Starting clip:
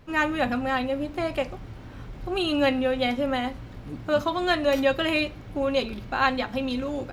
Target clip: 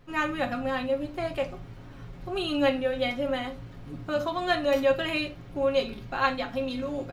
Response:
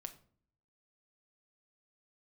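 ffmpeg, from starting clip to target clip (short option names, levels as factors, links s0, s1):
-filter_complex "[0:a]aecho=1:1:7.3:0.43[s0];[1:a]atrim=start_sample=2205,atrim=end_sample=3969[s1];[s0][s1]afir=irnorm=-1:irlink=0"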